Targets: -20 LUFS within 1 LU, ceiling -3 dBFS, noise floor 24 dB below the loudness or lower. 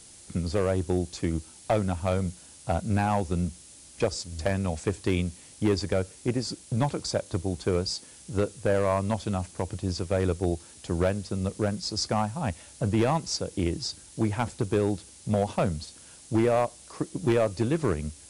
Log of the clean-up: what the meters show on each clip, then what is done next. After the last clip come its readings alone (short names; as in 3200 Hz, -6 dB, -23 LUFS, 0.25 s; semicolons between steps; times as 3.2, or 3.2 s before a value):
clipped 0.9%; flat tops at -16.5 dBFS; noise floor -50 dBFS; noise floor target -53 dBFS; loudness -28.5 LUFS; peak -16.5 dBFS; loudness target -20.0 LUFS
-> clip repair -16.5 dBFS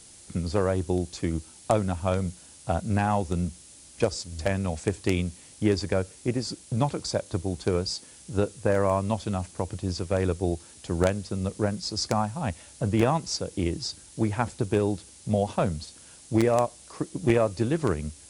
clipped 0.0%; noise floor -50 dBFS; noise floor target -52 dBFS
-> denoiser 6 dB, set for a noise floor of -50 dBFS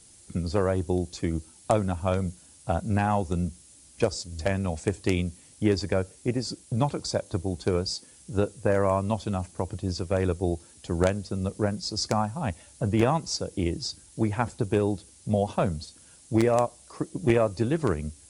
noise floor -54 dBFS; loudness -28.0 LUFS; peak -7.5 dBFS; loudness target -20.0 LUFS
-> gain +8 dB; limiter -3 dBFS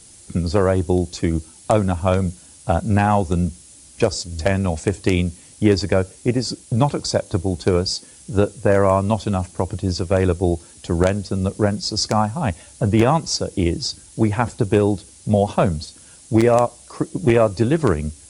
loudness -20.5 LUFS; peak -3.0 dBFS; noise floor -46 dBFS